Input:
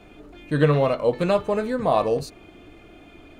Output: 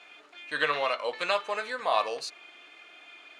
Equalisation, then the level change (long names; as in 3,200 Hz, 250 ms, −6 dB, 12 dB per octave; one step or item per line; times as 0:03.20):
Bessel high-pass filter 1,800 Hz, order 2
high-frequency loss of the air 74 metres
+7.0 dB